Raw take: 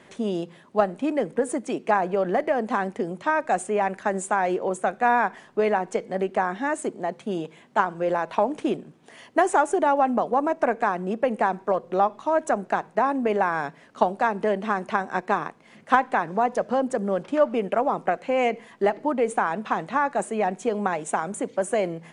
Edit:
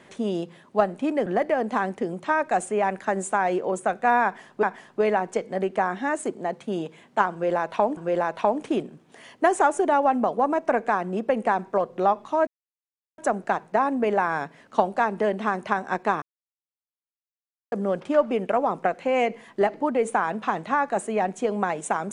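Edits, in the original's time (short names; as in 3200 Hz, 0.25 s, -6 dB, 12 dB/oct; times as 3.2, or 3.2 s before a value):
1.26–2.24 cut
5.22–5.61 loop, 2 plays
7.91–8.56 loop, 2 plays
12.41 insert silence 0.71 s
15.45–16.95 mute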